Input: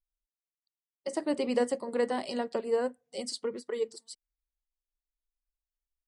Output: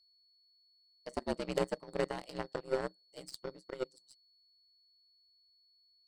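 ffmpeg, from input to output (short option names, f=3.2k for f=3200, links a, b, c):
-af "aeval=exprs='val(0)*sin(2*PI*66*n/s)':c=same,aeval=exprs='val(0)+0.00224*sin(2*PI*4400*n/s)':c=same,aeval=exprs='0.178*(cos(1*acos(clip(val(0)/0.178,-1,1)))-cos(1*PI/2))+0.0398*(cos(3*acos(clip(val(0)/0.178,-1,1)))-cos(3*PI/2))+0.0398*(cos(5*acos(clip(val(0)/0.178,-1,1)))-cos(5*PI/2))+0.00398*(cos(6*acos(clip(val(0)/0.178,-1,1)))-cos(6*PI/2))+0.0316*(cos(7*acos(clip(val(0)/0.178,-1,1)))-cos(7*PI/2))':c=same"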